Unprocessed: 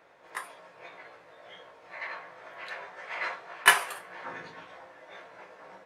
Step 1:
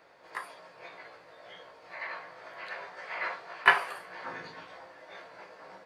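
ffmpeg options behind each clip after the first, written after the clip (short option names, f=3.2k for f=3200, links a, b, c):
-filter_complex "[0:a]acrossover=split=2800[a][b];[b]acompressor=threshold=-53dB:ratio=4:attack=1:release=60[c];[a][c]amix=inputs=2:normalize=0,equalizer=f=4.6k:t=o:w=0.2:g=11"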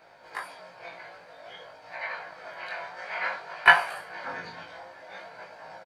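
-af "aecho=1:1:1.3:0.36,flanger=delay=18.5:depth=4.8:speed=0.53,volume=6.5dB"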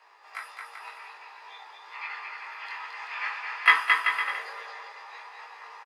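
-filter_complex "[0:a]afreqshift=290,asplit=2[a][b];[b]aecho=0:1:220|385|508.8|601.6|671.2:0.631|0.398|0.251|0.158|0.1[c];[a][c]amix=inputs=2:normalize=0,volume=-2.5dB"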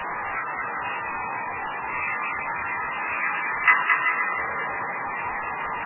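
-af "aeval=exprs='val(0)+0.5*0.0668*sgn(val(0))':c=same" -ar 11025 -c:a libmp3lame -b:a 8k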